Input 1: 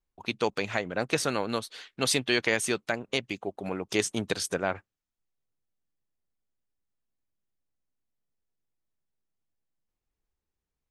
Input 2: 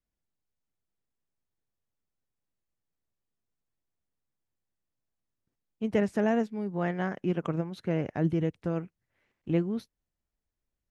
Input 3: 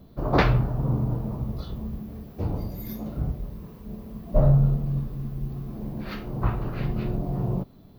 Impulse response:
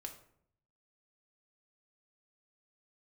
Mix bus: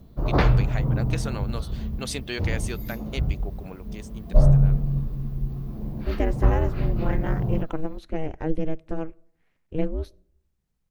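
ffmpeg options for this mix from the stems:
-filter_complex "[0:a]acompressor=mode=upward:threshold=0.00447:ratio=2.5,volume=0.473,afade=t=out:st=3.61:d=0.31:silence=0.266073[s0];[1:a]aeval=exprs='val(0)*sin(2*PI*160*n/s)':c=same,adelay=250,volume=1.12,asplit=2[s1][s2];[s2]volume=0.224[s3];[2:a]volume=0.75[s4];[3:a]atrim=start_sample=2205[s5];[s3][s5]afir=irnorm=-1:irlink=0[s6];[s0][s1][s4][s6]amix=inputs=4:normalize=0,lowshelf=f=100:g=9.5"

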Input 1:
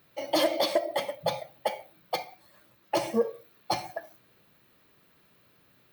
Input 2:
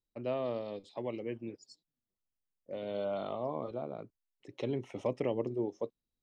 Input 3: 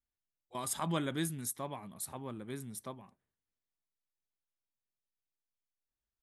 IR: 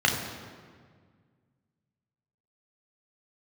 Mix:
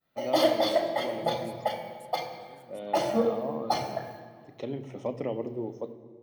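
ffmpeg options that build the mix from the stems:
-filter_complex "[0:a]agate=range=0.0224:threshold=0.002:ratio=3:detection=peak,volume=0.668,asplit=2[s0][s1];[s1]volume=0.237[s2];[1:a]agate=range=0.447:threshold=0.00251:ratio=16:detection=peak,volume=0.944,asplit=2[s3][s4];[s4]volume=0.0891[s5];[2:a]alimiter=level_in=2.24:limit=0.0631:level=0:latency=1,volume=0.447,volume=0.178,asplit=2[s6][s7];[s7]apad=whole_len=261167[s8];[s0][s8]sidechaincompress=threshold=0.002:ratio=8:attack=7:release=190[s9];[3:a]atrim=start_sample=2205[s10];[s2][s5]amix=inputs=2:normalize=0[s11];[s11][s10]afir=irnorm=-1:irlink=0[s12];[s9][s3][s6][s12]amix=inputs=4:normalize=0"

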